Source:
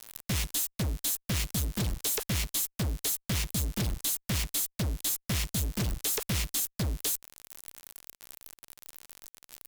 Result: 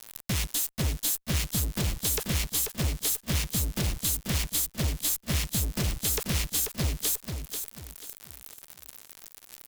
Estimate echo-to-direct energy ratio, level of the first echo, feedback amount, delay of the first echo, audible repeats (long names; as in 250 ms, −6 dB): −6.0 dB, −6.5 dB, 32%, 487 ms, 3